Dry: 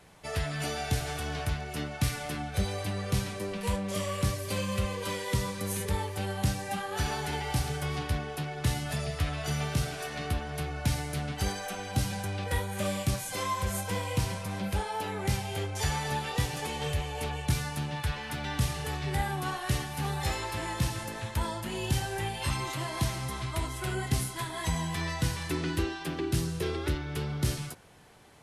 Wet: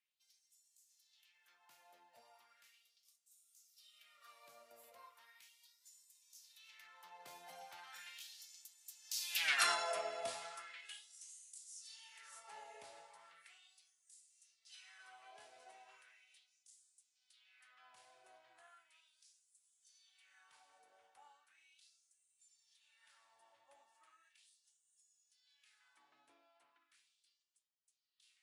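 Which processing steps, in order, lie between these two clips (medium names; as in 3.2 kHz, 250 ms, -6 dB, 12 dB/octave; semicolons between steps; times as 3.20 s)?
Doppler pass-by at 9.51 s, 55 m/s, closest 5.1 m; LFO high-pass sine 0.37 Hz 620–7700 Hz; trim +7 dB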